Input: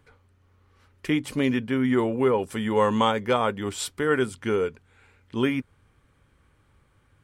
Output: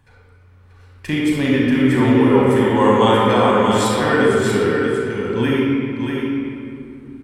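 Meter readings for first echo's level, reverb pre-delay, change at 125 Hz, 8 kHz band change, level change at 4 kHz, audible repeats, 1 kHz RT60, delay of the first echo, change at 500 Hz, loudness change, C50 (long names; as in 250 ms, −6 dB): −5.5 dB, 34 ms, +11.5 dB, +6.5 dB, +8.5 dB, 1, 2.3 s, 635 ms, +9.0 dB, +8.5 dB, −3.5 dB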